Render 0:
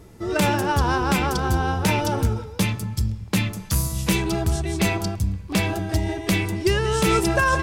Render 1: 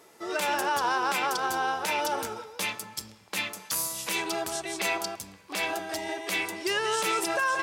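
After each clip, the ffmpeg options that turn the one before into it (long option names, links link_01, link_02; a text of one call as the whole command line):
ffmpeg -i in.wav -af "highpass=580,alimiter=limit=-18dB:level=0:latency=1:release=65" out.wav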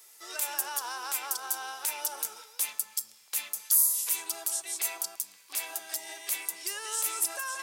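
ffmpeg -i in.wav -filter_complex "[0:a]aderivative,acrossover=split=250|1400|7100[link_01][link_02][link_03][link_04];[link_03]acompressor=threshold=-48dB:ratio=6[link_05];[link_01][link_02][link_05][link_04]amix=inputs=4:normalize=0,volume=6.5dB" out.wav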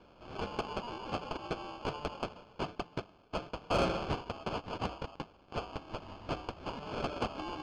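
ffmpeg -i in.wav -af "acrusher=samples=23:mix=1:aa=0.000001,lowpass=frequency=4800:width=0.5412,lowpass=frequency=4800:width=1.3066,asoftclip=type=tanh:threshold=-17dB,volume=-4.5dB" out.wav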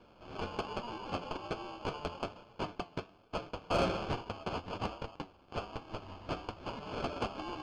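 ffmpeg -i in.wav -af "flanger=delay=8.3:depth=3.6:regen=71:speed=1.2:shape=triangular,volume=3.5dB" out.wav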